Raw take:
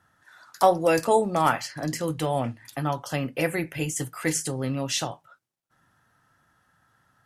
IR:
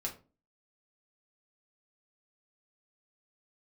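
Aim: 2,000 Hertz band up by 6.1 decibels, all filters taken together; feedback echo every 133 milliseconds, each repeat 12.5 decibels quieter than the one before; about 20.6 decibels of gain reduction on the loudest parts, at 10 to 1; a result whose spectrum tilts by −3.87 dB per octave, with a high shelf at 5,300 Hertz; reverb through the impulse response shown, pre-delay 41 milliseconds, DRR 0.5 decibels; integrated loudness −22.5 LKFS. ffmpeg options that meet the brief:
-filter_complex "[0:a]equalizer=frequency=2000:width_type=o:gain=7,highshelf=frequency=5300:gain=5,acompressor=threshold=-33dB:ratio=10,aecho=1:1:133|266|399:0.237|0.0569|0.0137,asplit=2[link_01][link_02];[1:a]atrim=start_sample=2205,adelay=41[link_03];[link_02][link_03]afir=irnorm=-1:irlink=0,volume=-1.5dB[link_04];[link_01][link_04]amix=inputs=2:normalize=0,volume=11.5dB"

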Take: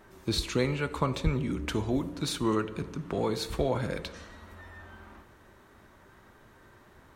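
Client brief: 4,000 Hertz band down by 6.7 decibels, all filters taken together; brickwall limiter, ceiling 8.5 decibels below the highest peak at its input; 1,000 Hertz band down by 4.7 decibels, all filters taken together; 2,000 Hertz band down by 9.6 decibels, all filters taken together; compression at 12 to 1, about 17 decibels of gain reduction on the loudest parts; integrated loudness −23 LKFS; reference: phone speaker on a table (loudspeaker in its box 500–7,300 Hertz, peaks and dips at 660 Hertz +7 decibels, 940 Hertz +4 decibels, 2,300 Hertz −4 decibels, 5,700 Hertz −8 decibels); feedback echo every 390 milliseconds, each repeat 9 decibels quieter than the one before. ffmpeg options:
ffmpeg -i in.wav -af "equalizer=frequency=1000:width_type=o:gain=-8.5,equalizer=frequency=2000:width_type=o:gain=-7,equalizer=frequency=4000:width_type=o:gain=-4,acompressor=threshold=-38dB:ratio=12,alimiter=level_in=10.5dB:limit=-24dB:level=0:latency=1,volume=-10.5dB,highpass=frequency=500:width=0.5412,highpass=frequency=500:width=1.3066,equalizer=frequency=660:width_type=q:width=4:gain=7,equalizer=frequency=940:width_type=q:width=4:gain=4,equalizer=frequency=2300:width_type=q:width=4:gain=-4,equalizer=frequency=5700:width_type=q:width=4:gain=-8,lowpass=frequency=7300:width=0.5412,lowpass=frequency=7300:width=1.3066,aecho=1:1:390|780|1170|1560:0.355|0.124|0.0435|0.0152,volume=29dB" out.wav

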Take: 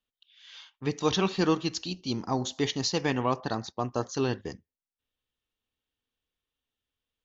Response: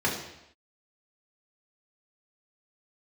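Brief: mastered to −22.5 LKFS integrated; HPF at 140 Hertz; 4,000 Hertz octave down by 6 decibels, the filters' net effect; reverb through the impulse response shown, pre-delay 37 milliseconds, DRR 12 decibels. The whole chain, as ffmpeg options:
-filter_complex "[0:a]highpass=140,equalizer=frequency=4000:width_type=o:gain=-7.5,asplit=2[link_01][link_02];[1:a]atrim=start_sample=2205,adelay=37[link_03];[link_02][link_03]afir=irnorm=-1:irlink=0,volume=-24dB[link_04];[link_01][link_04]amix=inputs=2:normalize=0,volume=8dB"

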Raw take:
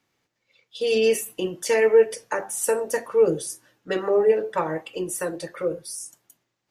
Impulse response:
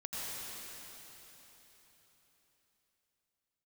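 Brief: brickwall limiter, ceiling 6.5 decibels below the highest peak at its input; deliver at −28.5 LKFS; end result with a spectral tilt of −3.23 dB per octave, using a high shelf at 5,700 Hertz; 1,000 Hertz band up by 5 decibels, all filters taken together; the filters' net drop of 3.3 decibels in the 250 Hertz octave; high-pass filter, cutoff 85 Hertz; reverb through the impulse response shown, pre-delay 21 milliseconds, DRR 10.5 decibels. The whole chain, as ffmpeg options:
-filter_complex "[0:a]highpass=85,equalizer=frequency=250:width_type=o:gain=-6,equalizer=frequency=1000:width_type=o:gain=6.5,highshelf=frequency=5700:gain=-7,alimiter=limit=-14.5dB:level=0:latency=1,asplit=2[link_01][link_02];[1:a]atrim=start_sample=2205,adelay=21[link_03];[link_02][link_03]afir=irnorm=-1:irlink=0,volume=-13.5dB[link_04];[link_01][link_04]amix=inputs=2:normalize=0,volume=-2.5dB"

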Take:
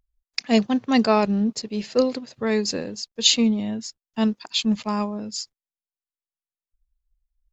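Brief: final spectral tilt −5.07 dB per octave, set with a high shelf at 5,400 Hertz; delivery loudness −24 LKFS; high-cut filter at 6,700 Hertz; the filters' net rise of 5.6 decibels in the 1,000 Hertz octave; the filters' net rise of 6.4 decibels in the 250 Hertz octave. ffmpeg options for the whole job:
ffmpeg -i in.wav -af "lowpass=6700,equalizer=frequency=250:width_type=o:gain=7,equalizer=frequency=1000:width_type=o:gain=7,highshelf=frequency=5400:gain=-9,volume=-6dB" out.wav

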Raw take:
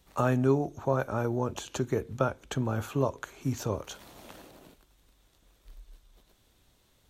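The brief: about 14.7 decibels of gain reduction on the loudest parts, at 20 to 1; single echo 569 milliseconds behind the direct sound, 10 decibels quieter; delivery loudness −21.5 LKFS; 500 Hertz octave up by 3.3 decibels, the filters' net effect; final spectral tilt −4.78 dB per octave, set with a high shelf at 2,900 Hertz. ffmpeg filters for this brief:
ffmpeg -i in.wav -af "equalizer=frequency=500:width_type=o:gain=4,highshelf=frequency=2900:gain=5,acompressor=threshold=-32dB:ratio=20,aecho=1:1:569:0.316,volume=17.5dB" out.wav

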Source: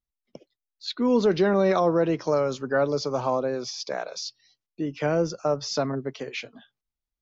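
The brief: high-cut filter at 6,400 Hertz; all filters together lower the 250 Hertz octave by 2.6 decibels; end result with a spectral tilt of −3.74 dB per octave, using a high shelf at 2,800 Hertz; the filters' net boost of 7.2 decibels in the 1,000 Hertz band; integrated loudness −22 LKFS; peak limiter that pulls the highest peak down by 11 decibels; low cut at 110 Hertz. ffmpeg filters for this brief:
ffmpeg -i in.wav -af "highpass=110,lowpass=6400,equalizer=frequency=250:width_type=o:gain=-4,equalizer=frequency=1000:width_type=o:gain=8.5,highshelf=frequency=2800:gain=7.5,volume=5dB,alimiter=limit=-11dB:level=0:latency=1" out.wav

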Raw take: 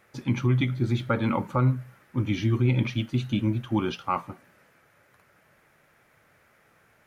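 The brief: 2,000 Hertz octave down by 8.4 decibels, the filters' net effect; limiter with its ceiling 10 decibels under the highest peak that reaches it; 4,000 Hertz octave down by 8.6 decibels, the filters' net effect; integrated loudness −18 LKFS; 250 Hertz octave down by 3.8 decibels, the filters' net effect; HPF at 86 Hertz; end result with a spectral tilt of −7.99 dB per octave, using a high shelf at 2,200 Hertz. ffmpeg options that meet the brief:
ffmpeg -i in.wav -af "highpass=86,equalizer=frequency=250:width_type=o:gain=-4.5,equalizer=frequency=2000:width_type=o:gain=-6.5,highshelf=frequency=2200:gain=-6,equalizer=frequency=4000:width_type=o:gain=-3,volume=15.5dB,alimiter=limit=-8dB:level=0:latency=1" out.wav

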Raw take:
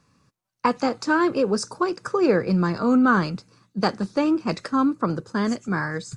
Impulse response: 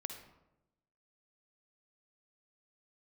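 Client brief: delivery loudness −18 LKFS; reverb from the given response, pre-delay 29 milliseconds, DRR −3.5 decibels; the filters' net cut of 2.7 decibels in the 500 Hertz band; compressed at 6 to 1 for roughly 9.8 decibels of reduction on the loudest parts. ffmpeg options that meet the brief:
-filter_complex "[0:a]equalizer=frequency=500:width_type=o:gain=-3.5,acompressor=threshold=-26dB:ratio=6,asplit=2[link_01][link_02];[1:a]atrim=start_sample=2205,adelay=29[link_03];[link_02][link_03]afir=irnorm=-1:irlink=0,volume=5dB[link_04];[link_01][link_04]amix=inputs=2:normalize=0,volume=8dB"

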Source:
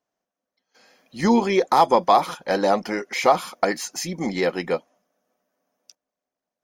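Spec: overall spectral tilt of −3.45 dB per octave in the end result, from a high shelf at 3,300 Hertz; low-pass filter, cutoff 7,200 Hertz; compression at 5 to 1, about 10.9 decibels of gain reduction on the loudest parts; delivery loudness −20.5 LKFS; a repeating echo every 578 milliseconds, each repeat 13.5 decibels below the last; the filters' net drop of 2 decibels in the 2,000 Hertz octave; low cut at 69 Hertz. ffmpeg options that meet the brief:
ffmpeg -i in.wav -af "highpass=69,lowpass=7200,equalizer=frequency=2000:width_type=o:gain=-4.5,highshelf=frequency=3300:gain=7,acompressor=threshold=-24dB:ratio=5,aecho=1:1:578|1156:0.211|0.0444,volume=8dB" out.wav

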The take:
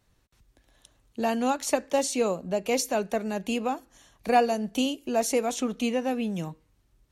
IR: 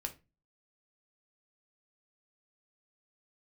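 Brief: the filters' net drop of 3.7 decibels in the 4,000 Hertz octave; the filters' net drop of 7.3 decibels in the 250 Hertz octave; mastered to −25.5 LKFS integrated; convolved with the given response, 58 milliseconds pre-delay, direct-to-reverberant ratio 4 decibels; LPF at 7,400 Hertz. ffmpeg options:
-filter_complex "[0:a]lowpass=7400,equalizer=frequency=250:width_type=o:gain=-8,equalizer=frequency=4000:width_type=o:gain=-5,asplit=2[link_01][link_02];[1:a]atrim=start_sample=2205,adelay=58[link_03];[link_02][link_03]afir=irnorm=-1:irlink=0,volume=-3dB[link_04];[link_01][link_04]amix=inputs=2:normalize=0,volume=3dB"

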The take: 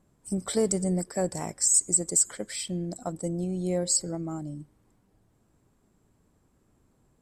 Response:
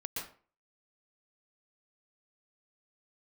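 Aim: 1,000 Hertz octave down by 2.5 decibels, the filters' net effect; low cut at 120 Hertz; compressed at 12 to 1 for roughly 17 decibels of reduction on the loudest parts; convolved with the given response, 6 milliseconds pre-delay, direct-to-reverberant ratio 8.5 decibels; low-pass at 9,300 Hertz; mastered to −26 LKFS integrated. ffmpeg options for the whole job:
-filter_complex "[0:a]highpass=120,lowpass=9300,equalizer=frequency=1000:width_type=o:gain=-4,acompressor=threshold=-37dB:ratio=12,asplit=2[link_01][link_02];[1:a]atrim=start_sample=2205,adelay=6[link_03];[link_02][link_03]afir=irnorm=-1:irlink=0,volume=-9.5dB[link_04];[link_01][link_04]amix=inputs=2:normalize=0,volume=14dB"

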